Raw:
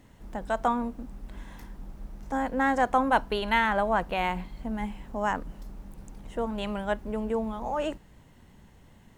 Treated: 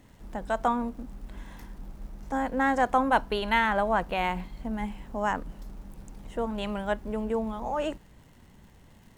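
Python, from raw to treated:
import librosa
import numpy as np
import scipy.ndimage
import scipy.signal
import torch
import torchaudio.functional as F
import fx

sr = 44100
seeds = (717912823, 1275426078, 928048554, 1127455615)

y = fx.dmg_crackle(x, sr, seeds[0], per_s=120.0, level_db=-50.0)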